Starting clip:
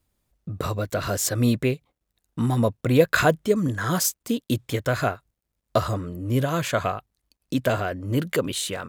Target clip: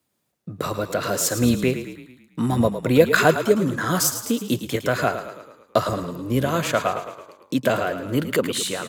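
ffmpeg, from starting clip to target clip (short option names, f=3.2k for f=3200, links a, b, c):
-filter_complex "[0:a]asplit=7[a][b][c][d][e][f][g];[b]adelay=109,afreqshift=-33,volume=-10dB[h];[c]adelay=218,afreqshift=-66,volume=-15.2dB[i];[d]adelay=327,afreqshift=-99,volume=-20.4dB[j];[e]adelay=436,afreqshift=-132,volume=-25.6dB[k];[f]adelay=545,afreqshift=-165,volume=-30.8dB[l];[g]adelay=654,afreqshift=-198,volume=-36dB[m];[a][h][i][j][k][l][m]amix=inputs=7:normalize=0,acrossover=split=120|1400|3200[n][o][p][q];[n]acrusher=bits=3:mix=0:aa=0.5[r];[r][o][p][q]amix=inputs=4:normalize=0,volume=2.5dB"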